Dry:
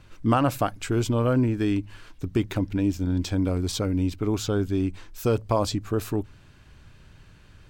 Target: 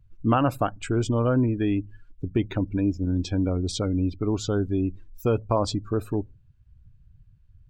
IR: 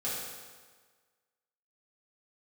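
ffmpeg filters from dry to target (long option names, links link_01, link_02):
-af "afftdn=noise_reduction=28:noise_floor=-38"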